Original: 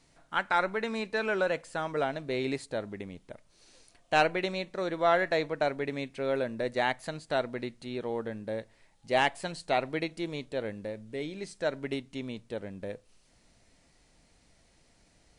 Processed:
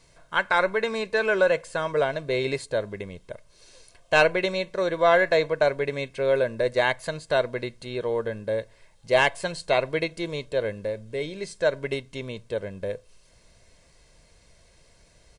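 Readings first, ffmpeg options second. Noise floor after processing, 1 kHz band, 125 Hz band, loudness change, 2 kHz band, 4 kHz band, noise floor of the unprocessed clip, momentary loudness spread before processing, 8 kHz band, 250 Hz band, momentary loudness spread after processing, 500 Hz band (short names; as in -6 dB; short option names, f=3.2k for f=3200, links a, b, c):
-58 dBFS, +3.0 dB, +5.5 dB, +6.5 dB, +7.0 dB, +5.5 dB, -65 dBFS, 13 LU, +6.5 dB, +1.5 dB, 13 LU, +7.5 dB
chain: -af "aecho=1:1:1.9:0.57,volume=5dB"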